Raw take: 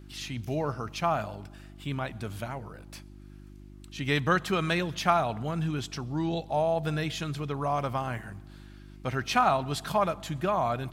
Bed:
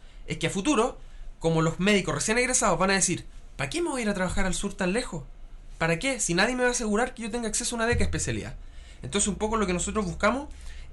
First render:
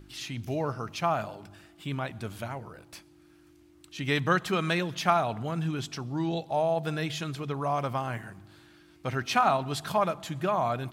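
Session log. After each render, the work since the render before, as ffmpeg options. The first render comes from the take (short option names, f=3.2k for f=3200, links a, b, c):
-af "bandreject=f=50:t=h:w=4,bandreject=f=100:t=h:w=4,bandreject=f=150:t=h:w=4,bandreject=f=200:t=h:w=4,bandreject=f=250:t=h:w=4"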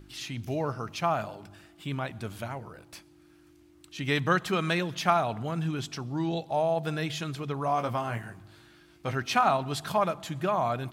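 -filter_complex "[0:a]asettb=1/sr,asplit=3[a][b][c];[a]atrim=end=7.664[d];[b]atrim=start=7.66:end=9.12,asetpts=PTS-STARTPTS,afade=t=in:d=0.004:c=qsin,afade=t=out:st=1.456:d=0.004:c=qsin,asplit=2[e][f];[f]adelay=18,volume=-6.5dB[g];[e][g]amix=inputs=2:normalize=0,atrim=end_sample=64386[h];[c]atrim=start=9.116[i];[d][h]acrossfade=d=0.004:c1=hsin:c2=qsin[j];[j][i]acrossfade=d=0.004:c1=qsin:c2=hsin"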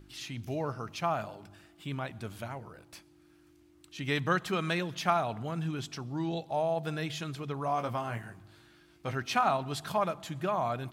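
-af "volume=-3.5dB"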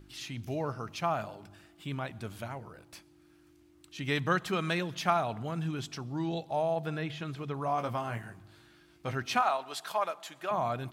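-filter_complex "[0:a]asettb=1/sr,asplit=3[a][b][c];[a]atrim=end=6.754[d];[b]atrim=start=6.75:end=7.78,asetpts=PTS-STARTPTS,afade=t=in:d=0.004:c=qsin,afade=t=out:st=1.026:d=0.004:c=qsin,acrossover=split=3300[e][f];[f]acompressor=threshold=-57dB:ratio=4:attack=1:release=60[g];[e][g]amix=inputs=2:normalize=0[h];[c]atrim=start=7.776[i];[d][h]acrossfade=d=0.004:c1=hsin:c2=qsin[j];[j][i]acrossfade=d=0.004:c1=qsin:c2=hsin,asettb=1/sr,asplit=3[k][l][m];[k]atrim=end=9.424[n];[l]atrim=start=9.42:end=10.51,asetpts=PTS-STARTPTS,afade=t=in:d=0.004:c=qsin,afade=t=out:st=1.086:d=0.004:c=qsin,highpass=560[o];[m]atrim=start=10.506[p];[n][o]acrossfade=d=0.004:c1=hsin:c2=qsin[q];[q][p]acrossfade=d=0.004:c1=qsin:c2=hsin"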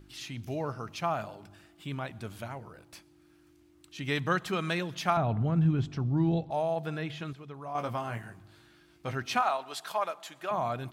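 -filter_complex "[0:a]asettb=1/sr,asplit=3[a][b][c];[a]atrim=end=5.174[d];[b]atrim=start=5.17:end=6.51,asetpts=PTS-STARTPTS,afade=t=in:d=0.004:c=qsin,afade=t=out:st=1.336:d=0.004:c=qsin,aemphasis=mode=reproduction:type=riaa[e];[c]atrim=start=6.506[f];[d][e]acrossfade=d=0.004:c1=hsin:c2=qsin[g];[g][f]acrossfade=d=0.004:c1=qsin:c2=hsin,asplit=3[h][i][j];[h]atrim=end=7.332[k];[i]atrim=start=7.328:end=7.752,asetpts=PTS-STARTPTS,volume=-8dB[l];[j]atrim=start=7.748[m];[k][l]acrossfade=d=0.004:c1=hsin:c2=hsin[n];[n][m]acrossfade=d=0.004:c1=hsin:c2=hsin"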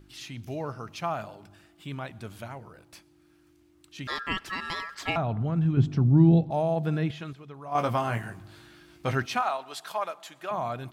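-filter_complex "[0:a]asettb=1/sr,asplit=3[a][b][c];[a]atrim=end=4.074[d];[b]atrim=start=4.07:end=5.16,asetpts=PTS-STARTPTS,afade=t=in:d=0.004:c=qsin,afade=t=out:st=1.086:d=0.004:c=qsin,aeval=exprs='val(0)*sin(2*PI*1500*n/s)':c=same[e];[c]atrim=start=5.156[f];[d][e]acrossfade=d=0.004:c1=hsin:c2=qsin[g];[g][f]acrossfade=d=0.004:c1=qsin:c2=hsin,asettb=1/sr,asplit=3[h][i][j];[h]atrim=end=5.774[k];[i]atrim=start=5.77:end=7.11,asetpts=PTS-STARTPTS,afade=t=in:d=0.004:c=qsin,afade=t=out:st=1.336:d=0.004:c=qsin,equalizer=f=180:w=0.49:g=10[l];[j]atrim=start=7.106[m];[k][l]acrossfade=d=0.004:c1=hsin:c2=qsin[n];[n][m]acrossfade=d=0.004:c1=qsin:c2=hsin,asplit=3[o][p][q];[o]afade=t=out:st=7.71:d=0.02[r];[p]acontrast=85,afade=t=in:st=7.71:d=0.02,afade=t=out:st=9.25:d=0.02[s];[q]afade=t=in:st=9.25:d=0.02[t];[r][s][t]amix=inputs=3:normalize=0"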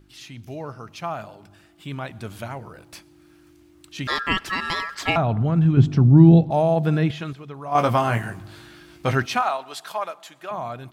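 -af "dynaudnorm=f=650:g=7:m=10dB"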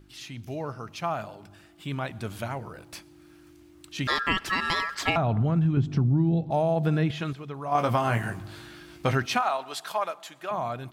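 -af "acompressor=threshold=-20dB:ratio=8"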